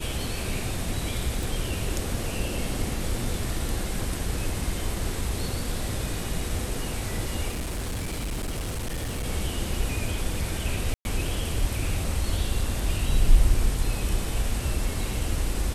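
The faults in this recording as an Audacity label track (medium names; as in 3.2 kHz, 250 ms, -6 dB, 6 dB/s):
1.430000	1.430000	pop
7.490000	9.250000	clipped -26.5 dBFS
10.940000	11.050000	dropout 111 ms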